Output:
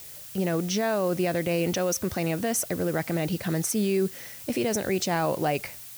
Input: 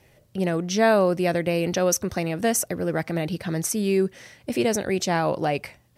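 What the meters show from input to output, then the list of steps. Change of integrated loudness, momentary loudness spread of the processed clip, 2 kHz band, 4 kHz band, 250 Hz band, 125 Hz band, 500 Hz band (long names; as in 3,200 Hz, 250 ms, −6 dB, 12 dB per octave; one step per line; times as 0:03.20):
−3.0 dB, 4 LU, −4.0 dB, −2.0 dB, −2.5 dB, −1.5 dB, −4.0 dB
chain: brickwall limiter −17 dBFS, peak gain reduction 9.5 dB
background noise blue −43 dBFS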